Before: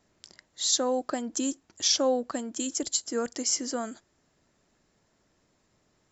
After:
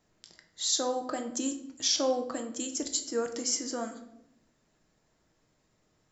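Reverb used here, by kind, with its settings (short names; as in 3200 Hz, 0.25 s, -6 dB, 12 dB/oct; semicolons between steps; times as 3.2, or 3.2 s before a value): shoebox room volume 190 m³, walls mixed, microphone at 0.54 m; gain -3.5 dB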